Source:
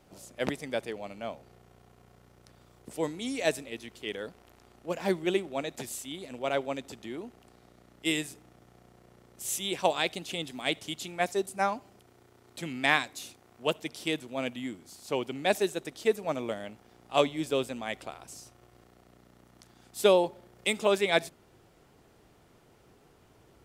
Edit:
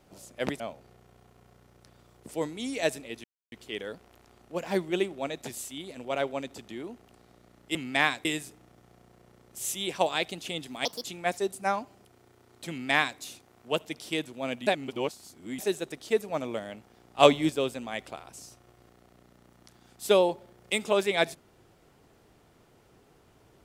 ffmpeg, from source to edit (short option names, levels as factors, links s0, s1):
-filter_complex "[0:a]asplit=11[s0][s1][s2][s3][s4][s5][s6][s7][s8][s9][s10];[s0]atrim=end=0.602[s11];[s1]atrim=start=1.218:end=3.86,asetpts=PTS-STARTPTS,afade=t=out:st=2.638:d=0.004:c=hsin,apad=pad_dur=0.28[s12];[s2]atrim=start=3.86:end=8.092,asetpts=PTS-STARTPTS,afade=t=in:d=0.004:c=hsin[s13];[s3]atrim=start=12.638:end=13.142[s14];[s4]atrim=start=8.088:end=10.694[s15];[s5]atrim=start=10.69:end=10.99,asetpts=PTS-STARTPTS,asetrate=67914,aresample=44100[s16];[s6]atrim=start=10.986:end=14.612[s17];[s7]atrim=start=14.608:end=15.532,asetpts=PTS-STARTPTS,areverse[s18];[s8]atrim=start=15.528:end=17.132[s19];[s9]atrim=start=17.128:end=17.442,asetpts=PTS-STARTPTS,volume=2.11[s20];[s10]atrim=start=17.438[s21];[s12][s13]concat=n=2:v=0:a=1[s22];[s11][s22]acrossfade=d=0.004:c1=hsin:c2=hsin[s23];[s23][s14]acrossfade=d=0.004:c1=hsin:c2=hsin[s24];[s24][s15]acrossfade=d=0.004:c1=hsin:c2=hsin[s25];[s25][s16]acrossfade=d=0.004:c1=hsin:c2=hsin[s26];[s26][s17]acrossfade=d=0.004:c1=hsin:c2=hsin[s27];[s27][s18]acrossfade=d=0.004:c1=hsin:c2=hsin[s28];[s28][s19]acrossfade=d=0.004:c1=hsin:c2=hsin[s29];[s29][s20]acrossfade=d=0.004:c1=hsin:c2=hsin[s30];[s30][s21]acrossfade=d=0.004:c1=hsin:c2=hsin"